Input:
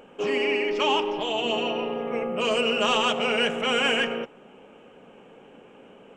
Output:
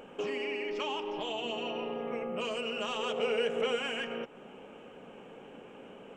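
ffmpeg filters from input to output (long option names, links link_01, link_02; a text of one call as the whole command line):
ffmpeg -i in.wav -filter_complex "[0:a]acompressor=threshold=-33dB:ratio=6,asettb=1/sr,asplit=3[link_01][link_02][link_03];[link_01]atrim=end=2.994[link_04];[link_02]atrim=start=2.99:end=3.76,asetpts=PTS-STARTPTS,afade=type=in:duration=0.004:curve=qsin,afade=type=out:start_time=0.766:duration=0.004:curve=qsin,equalizer=frequency=460:width=4.4:gain=11.5[link_05];[link_03]atrim=start=3.756[link_06];[link_04][link_05]acrossfade=duration=0.004:curve1=hsin:curve2=qsin[link_07];[link_07][link_06]acrossfade=duration=0.004:curve1=qsin:curve2=hsin" out.wav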